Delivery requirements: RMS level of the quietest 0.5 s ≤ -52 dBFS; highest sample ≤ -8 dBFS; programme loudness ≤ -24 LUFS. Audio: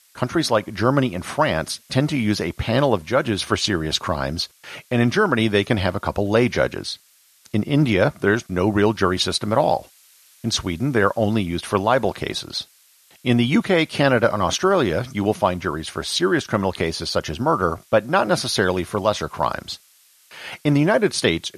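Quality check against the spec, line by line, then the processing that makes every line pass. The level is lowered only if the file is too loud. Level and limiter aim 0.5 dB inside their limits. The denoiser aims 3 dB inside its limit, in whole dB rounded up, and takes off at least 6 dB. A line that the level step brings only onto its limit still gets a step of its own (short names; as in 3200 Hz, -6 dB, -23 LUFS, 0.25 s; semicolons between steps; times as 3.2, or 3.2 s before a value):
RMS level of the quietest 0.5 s -55 dBFS: OK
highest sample -3.0 dBFS: fail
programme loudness -21.0 LUFS: fail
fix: gain -3.5 dB; limiter -8.5 dBFS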